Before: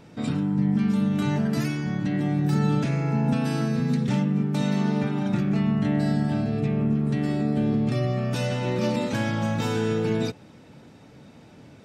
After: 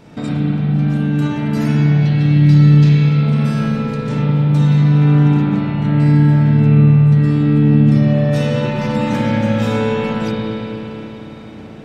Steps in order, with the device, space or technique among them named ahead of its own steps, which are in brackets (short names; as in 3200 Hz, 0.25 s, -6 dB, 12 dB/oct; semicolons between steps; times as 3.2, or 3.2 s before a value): 1.97–3.23 EQ curve 210 Hz 0 dB, 630 Hz -12 dB, 1000 Hz 0 dB, 1500 Hz -4 dB, 4300 Hz +10 dB, 9300 Hz -5 dB; drum-bus smash (transient shaper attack +6 dB, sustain +2 dB; compressor, threshold -23 dBFS, peak gain reduction 8 dB; soft clip -19 dBFS, distortion -21 dB); spring tank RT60 3.9 s, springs 34/55 ms, chirp 25 ms, DRR -6.5 dB; gain +4 dB